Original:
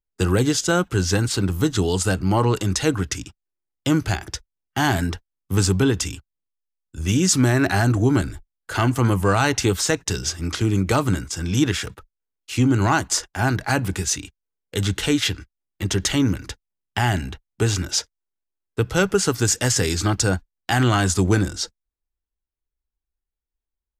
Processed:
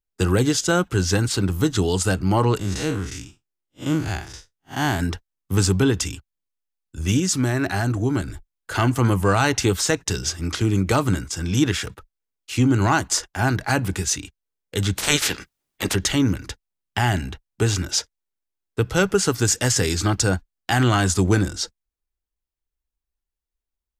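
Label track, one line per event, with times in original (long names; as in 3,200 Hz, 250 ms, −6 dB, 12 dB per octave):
2.590000	5.000000	spectrum smeared in time width 108 ms
7.200000	8.280000	clip gain −4 dB
14.960000	15.940000	ceiling on every frequency bin ceiling under each frame's peak by 23 dB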